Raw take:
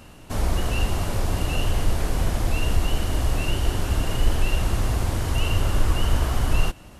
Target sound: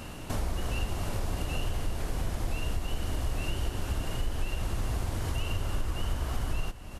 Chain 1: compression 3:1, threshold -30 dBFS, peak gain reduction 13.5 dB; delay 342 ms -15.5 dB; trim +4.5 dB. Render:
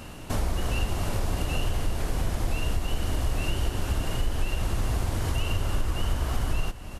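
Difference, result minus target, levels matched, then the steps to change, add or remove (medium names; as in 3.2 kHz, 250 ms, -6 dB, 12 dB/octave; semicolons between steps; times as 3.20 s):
compression: peak gain reduction -4.5 dB
change: compression 3:1, threshold -36.5 dBFS, peak gain reduction 18 dB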